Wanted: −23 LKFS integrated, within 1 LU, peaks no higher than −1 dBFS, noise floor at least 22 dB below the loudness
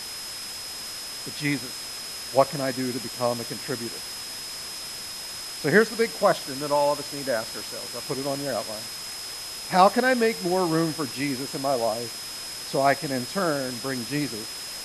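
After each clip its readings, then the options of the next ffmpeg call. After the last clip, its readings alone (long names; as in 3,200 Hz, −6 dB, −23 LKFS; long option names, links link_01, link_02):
interfering tone 5,100 Hz; level of the tone −36 dBFS; background noise floor −36 dBFS; target noise floor −49 dBFS; integrated loudness −26.5 LKFS; sample peak −3.0 dBFS; target loudness −23.0 LKFS
→ -af "bandreject=frequency=5100:width=30"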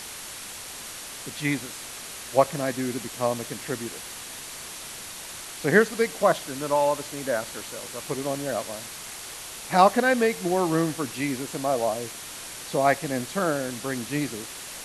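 interfering tone none found; background noise floor −39 dBFS; target noise floor −49 dBFS
→ -af "afftdn=noise_reduction=10:noise_floor=-39"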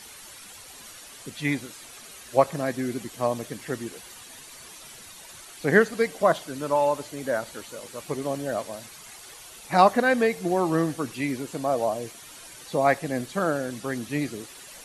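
background noise floor −46 dBFS; target noise floor −48 dBFS
→ -af "afftdn=noise_reduction=6:noise_floor=-46"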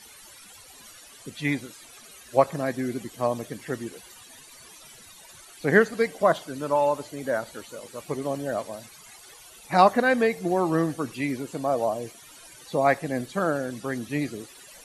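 background noise floor −49 dBFS; integrated loudness −26.0 LKFS; sample peak −3.0 dBFS; target loudness −23.0 LKFS
→ -af "volume=3dB,alimiter=limit=-1dB:level=0:latency=1"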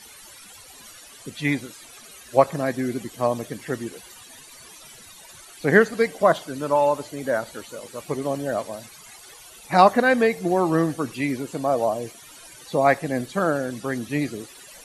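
integrated loudness −23.0 LKFS; sample peak −1.0 dBFS; background noise floor −46 dBFS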